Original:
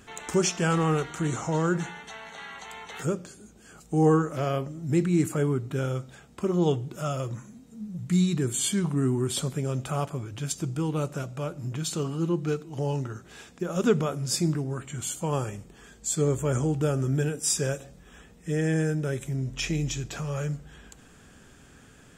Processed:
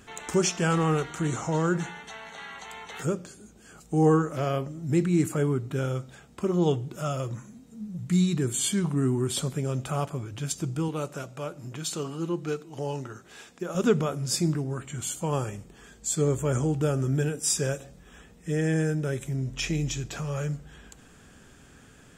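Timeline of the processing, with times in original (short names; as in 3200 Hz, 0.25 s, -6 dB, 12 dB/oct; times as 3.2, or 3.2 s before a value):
10.88–13.75 low shelf 180 Hz -10.5 dB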